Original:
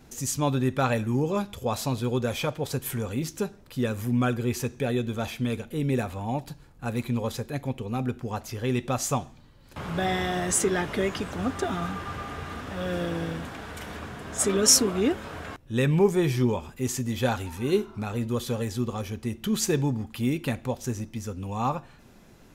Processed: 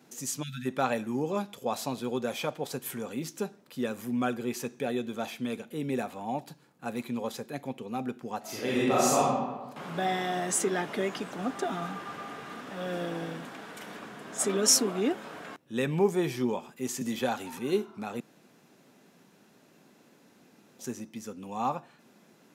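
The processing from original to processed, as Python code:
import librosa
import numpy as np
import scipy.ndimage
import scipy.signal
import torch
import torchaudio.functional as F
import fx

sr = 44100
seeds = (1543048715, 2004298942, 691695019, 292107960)

y = fx.spec_erase(x, sr, start_s=0.42, length_s=0.24, low_hz=250.0, high_hz=1300.0)
y = fx.reverb_throw(y, sr, start_s=8.39, length_s=0.83, rt60_s=1.3, drr_db=-7.5)
y = fx.band_squash(y, sr, depth_pct=70, at=(17.01, 17.59))
y = fx.edit(y, sr, fx.room_tone_fill(start_s=18.2, length_s=2.59), tone=tone)
y = scipy.signal.sosfilt(scipy.signal.butter(4, 170.0, 'highpass', fs=sr, output='sos'), y)
y = fx.dynamic_eq(y, sr, hz=740.0, q=3.3, threshold_db=-43.0, ratio=4.0, max_db=4)
y = y * librosa.db_to_amplitude(-4.0)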